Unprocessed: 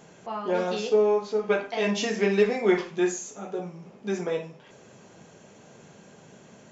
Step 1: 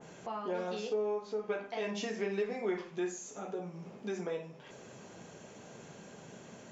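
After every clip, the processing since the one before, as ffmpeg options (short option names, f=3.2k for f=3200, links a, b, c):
-af "bandreject=f=50:t=h:w=6,bandreject=f=100:t=h:w=6,bandreject=f=150:t=h:w=6,bandreject=f=200:t=h:w=6,acompressor=threshold=-41dB:ratio=2,adynamicequalizer=threshold=0.00251:dfrequency=2100:dqfactor=0.7:tfrequency=2100:tqfactor=0.7:attack=5:release=100:ratio=0.375:range=1.5:mode=cutabove:tftype=highshelf"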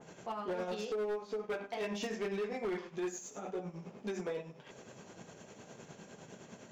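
-filter_complex "[0:a]asplit=2[a][b];[b]aeval=exprs='sgn(val(0))*max(abs(val(0))-0.00316,0)':c=same,volume=-10dB[c];[a][c]amix=inputs=2:normalize=0,tremolo=f=9.8:d=0.51,asoftclip=type=hard:threshold=-32dB"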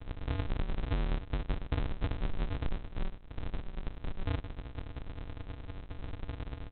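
-af "acompressor=threshold=-51dB:ratio=2.5,aresample=8000,acrusher=samples=42:mix=1:aa=0.000001,aresample=44100,volume=16dB"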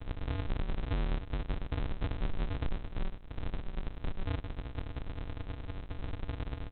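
-af "alimiter=level_in=4.5dB:limit=-24dB:level=0:latency=1:release=136,volume=-4.5dB,volume=2.5dB"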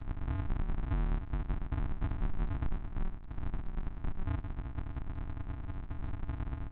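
-af "aeval=exprs='val(0)+0.5*0.00422*sgn(val(0))':c=same,lowpass=1.6k,equalizer=f=500:t=o:w=0.46:g=-14.5"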